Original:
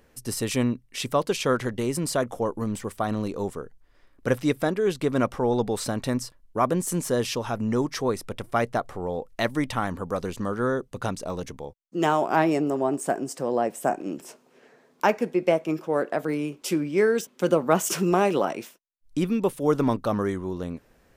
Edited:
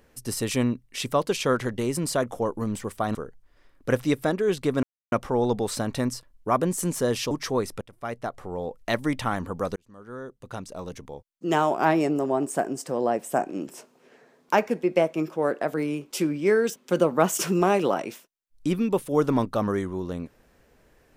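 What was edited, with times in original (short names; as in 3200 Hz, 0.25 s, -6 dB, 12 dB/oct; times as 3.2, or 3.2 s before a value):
3.15–3.53 cut
5.21 insert silence 0.29 s
7.4–7.82 cut
8.32–9.7 fade in equal-power, from -21.5 dB
10.27–12.1 fade in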